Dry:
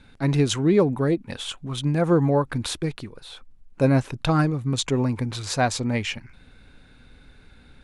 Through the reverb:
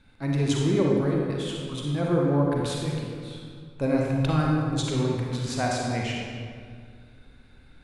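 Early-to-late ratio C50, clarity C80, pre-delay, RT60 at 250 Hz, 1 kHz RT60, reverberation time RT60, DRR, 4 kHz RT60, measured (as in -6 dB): -1.0 dB, 1.0 dB, 36 ms, 2.5 s, 1.9 s, 2.0 s, -2.0 dB, 1.3 s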